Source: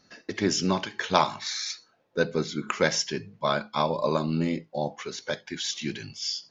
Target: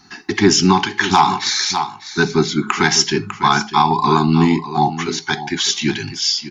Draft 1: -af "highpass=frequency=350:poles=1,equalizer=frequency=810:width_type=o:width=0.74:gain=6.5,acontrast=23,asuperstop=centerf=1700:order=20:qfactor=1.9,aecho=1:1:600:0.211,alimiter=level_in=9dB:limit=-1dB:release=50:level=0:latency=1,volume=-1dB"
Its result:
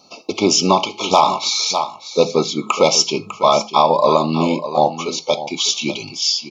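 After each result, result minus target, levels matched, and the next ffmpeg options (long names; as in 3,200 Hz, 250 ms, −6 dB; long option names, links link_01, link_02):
2,000 Hz band −8.0 dB; 250 Hz band −4.0 dB
-af "highpass=frequency=350:poles=1,equalizer=frequency=810:width_type=o:width=0.74:gain=6.5,acontrast=23,asuperstop=centerf=550:order=20:qfactor=1.9,aecho=1:1:600:0.211,alimiter=level_in=9dB:limit=-1dB:release=50:level=0:latency=1,volume=-1dB"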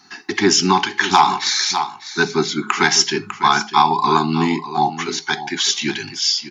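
250 Hz band −3.5 dB
-af "equalizer=frequency=810:width_type=o:width=0.74:gain=6.5,acontrast=23,asuperstop=centerf=550:order=20:qfactor=1.9,aecho=1:1:600:0.211,alimiter=level_in=9dB:limit=-1dB:release=50:level=0:latency=1,volume=-1dB"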